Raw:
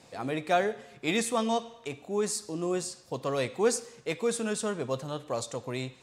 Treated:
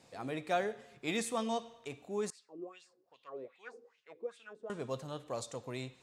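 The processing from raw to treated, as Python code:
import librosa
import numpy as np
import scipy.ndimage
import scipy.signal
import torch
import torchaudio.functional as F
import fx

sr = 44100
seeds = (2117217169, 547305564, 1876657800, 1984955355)

y = fx.wah_lfo(x, sr, hz=2.5, low_hz=330.0, high_hz=3200.0, q=4.6, at=(2.3, 4.7))
y = y * librosa.db_to_amplitude(-7.0)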